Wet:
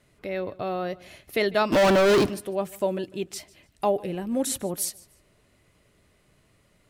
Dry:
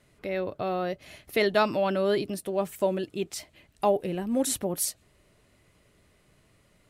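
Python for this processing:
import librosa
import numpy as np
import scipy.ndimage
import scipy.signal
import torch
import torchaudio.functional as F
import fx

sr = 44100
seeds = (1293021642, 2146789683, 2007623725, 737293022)

p1 = fx.leveller(x, sr, passes=5, at=(1.72, 2.29))
y = p1 + fx.echo_feedback(p1, sr, ms=149, feedback_pct=27, wet_db=-22.0, dry=0)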